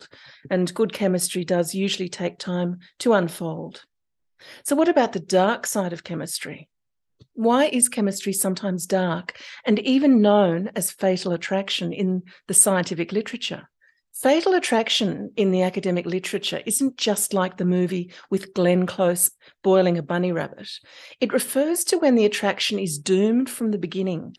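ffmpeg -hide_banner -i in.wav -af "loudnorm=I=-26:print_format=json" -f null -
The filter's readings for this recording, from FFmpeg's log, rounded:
"input_i" : "-22.0",
"input_tp" : "-2.5",
"input_lra" : "3.3",
"input_thresh" : "-32.4",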